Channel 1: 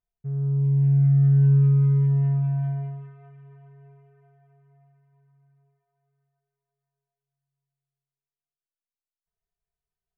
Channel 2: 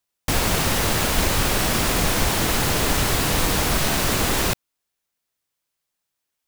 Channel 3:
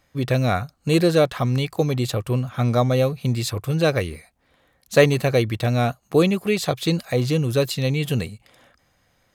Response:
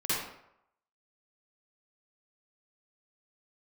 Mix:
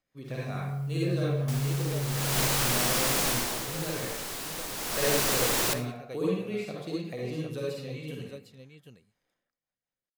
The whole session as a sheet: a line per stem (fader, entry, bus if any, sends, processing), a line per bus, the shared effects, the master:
-3.5 dB, 0.00 s, bus A, send -14 dB, no echo send, bit-crush 8-bit; auto duck -12 dB, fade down 0.25 s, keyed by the third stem
2.01 s -19.5 dB -> 2.38 s -7 dB -> 3.27 s -7 dB -> 3.69 s -17 dB -> 4.74 s -17 dB -> 5.12 s -7 dB, 1.20 s, no bus, send -18.5 dB, no echo send, tone controls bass -5 dB, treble +4 dB
-10.0 dB, 0.00 s, bus A, send -7.5 dB, echo send -10 dB, rotary speaker horn 5 Hz; upward expander 1.5:1, over -30 dBFS
bus A: 0.0 dB, compressor, threshold -40 dBFS, peak gain reduction 17 dB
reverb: on, RT60 0.80 s, pre-delay 45 ms
echo: echo 0.754 s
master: bell 66 Hz -13 dB 1.3 oct

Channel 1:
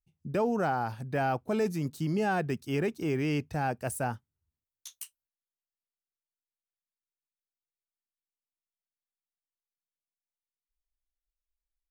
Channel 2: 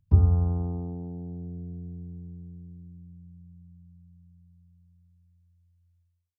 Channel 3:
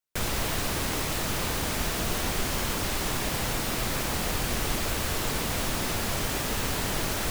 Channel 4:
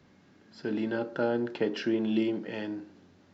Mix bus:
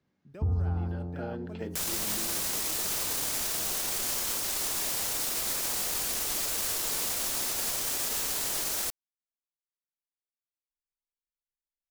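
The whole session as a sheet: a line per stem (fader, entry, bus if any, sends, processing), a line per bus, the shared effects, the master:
-17.0 dB, 0.00 s, no send, dry
-4.5 dB, 0.30 s, no send, dry
-1.0 dB, 1.60 s, no send, tone controls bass -11 dB, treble +12 dB
0.69 s -17.5 dB -> 1.34 s -9.5 dB, 0.00 s, no send, dry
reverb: off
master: limiter -21.5 dBFS, peak gain reduction 10 dB

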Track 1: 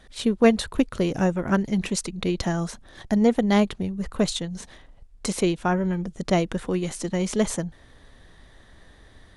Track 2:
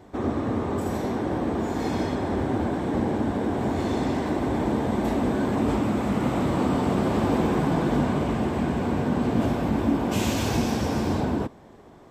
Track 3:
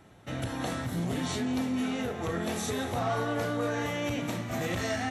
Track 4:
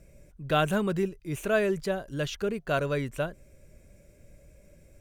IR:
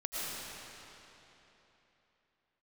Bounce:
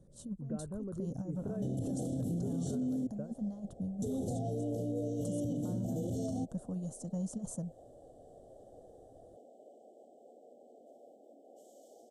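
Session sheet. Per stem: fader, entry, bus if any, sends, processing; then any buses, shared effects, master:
-20.0 dB, 0.00 s, no bus, no send, negative-ratio compressor -23 dBFS, ratio -0.5; fixed phaser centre 940 Hz, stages 4
-18.0 dB, 1.45 s, bus A, no send, compressor 2.5:1, threshold -33 dBFS, peak gain reduction 10.5 dB; ladder high-pass 520 Hz, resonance 45%
-4.5 dB, 1.35 s, muted 3.07–4.02, bus A, no send, dry
-14.5 dB, 0.00 s, no bus, no send, compressor 2.5:1, threshold -38 dBFS, peak gain reduction 12.5 dB; LPF 1800 Hz 24 dB/oct
bus A: 0.0 dB, brick-wall FIR band-stop 830–2900 Hz; compressor 2:1, threshold -41 dBFS, peak gain reduction 6 dB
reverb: off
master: ten-band EQ 125 Hz +11 dB, 250 Hz +10 dB, 500 Hz +9 dB, 1000 Hz -5 dB, 2000 Hz -11 dB, 4000 Hz -8 dB, 8000 Hz +8 dB; limiter -28.5 dBFS, peak gain reduction 10 dB

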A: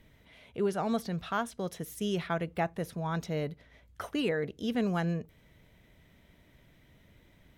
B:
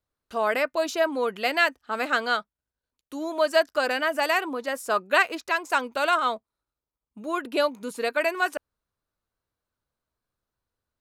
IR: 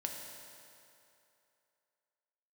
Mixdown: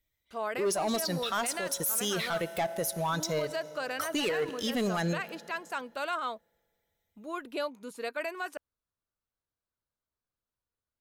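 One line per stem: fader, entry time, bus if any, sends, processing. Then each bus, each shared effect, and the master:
+0.5 dB, 0.00 s, send -13.5 dB, per-bin expansion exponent 1.5; tone controls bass -13 dB, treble +14 dB; sample leveller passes 3
-9.0 dB, 0.00 s, no send, dry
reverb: on, RT60 2.8 s, pre-delay 3 ms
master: limiter -23.5 dBFS, peak gain reduction 10 dB

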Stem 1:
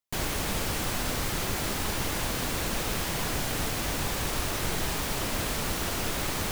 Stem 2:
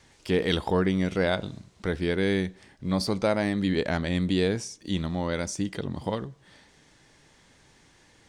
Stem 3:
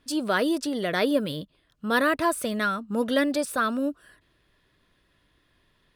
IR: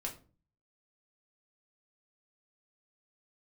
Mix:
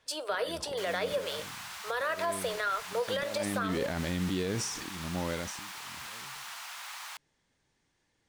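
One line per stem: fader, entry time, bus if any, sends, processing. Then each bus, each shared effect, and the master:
-8.5 dB, 0.65 s, bus A, send -18.5 dB, steep high-pass 840 Hz 36 dB/oct
2.8 s -16.5 dB -> 3.56 s -4.5 dB -> 5.27 s -4.5 dB -> 5.77 s -17.5 dB, 0.00 s, no bus, no send, auto swell 0.262 s; sustainer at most 45 dB/s
-2.0 dB, 0.00 s, bus A, send -8.5 dB, steep high-pass 420 Hz 48 dB/oct
bus A: 0.0 dB, high shelf 9800 Hz -10.5 dB; compressor, threshold -28 dBFS, peak gain reduction 8 dB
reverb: on, RT60 0.40 s, pre-delay 4 ms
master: limiter -22.5 dBFS, peak gain reduction 7.5 dB

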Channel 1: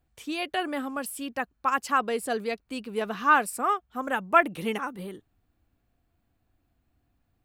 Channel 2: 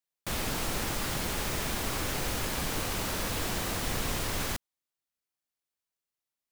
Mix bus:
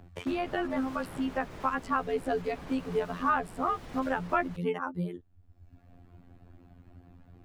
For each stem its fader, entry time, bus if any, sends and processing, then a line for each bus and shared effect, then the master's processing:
+0.5 dB, 0.00 s, no send, reverb removal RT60 0.96 s; low shelf 180 Hz +10 dB; robotiser 87.6 Hz
-4.5 dB, 0.00 s, no send, spectral gate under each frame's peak -30 dB strong; auto duck -8 dB, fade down 0.25 s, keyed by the first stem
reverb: off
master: LPF 1300 Hz 6 dB/oct; three-band squash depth 70%

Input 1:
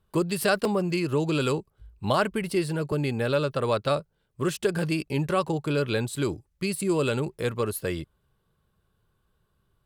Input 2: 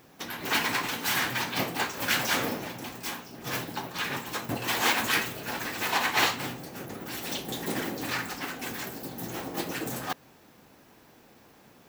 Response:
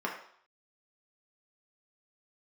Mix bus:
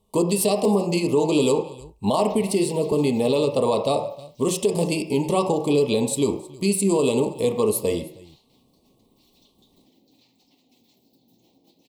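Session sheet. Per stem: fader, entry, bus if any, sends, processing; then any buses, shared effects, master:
+1.0 dB, 0.00 s, send -3.5 dB, echo send -19.5 dB, graphic EQ 125/1000/8000 Hz +4/+6/+8 dB
2.97 s -10 dB -> 3.41 s -20 dB, 2.10 s, no send, no echo send, fifteen-band EQ 250 Hz +7 dB, 4000 Hz +10 dB, 10000 Hz -6 dB; compressor 3:1, threshold -40 dBFS, peak gain reduction 17 dB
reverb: on, RT60 0.60 s, pre-delay 3 ms
echo: echo 0.316 s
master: Butterworth band-stop 1500 Hz, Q 0.78; limiter -11 dBFS, peak gain reduction 8.5 dB

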